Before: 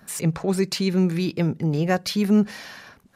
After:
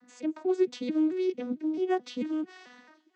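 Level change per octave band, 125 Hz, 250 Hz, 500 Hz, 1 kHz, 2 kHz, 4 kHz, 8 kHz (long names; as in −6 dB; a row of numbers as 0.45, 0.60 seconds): below −30 dB, −7.5 dB, −3.5 dB, −6.0 dB, −12.5 dB, −15.0 dB, below −20 dB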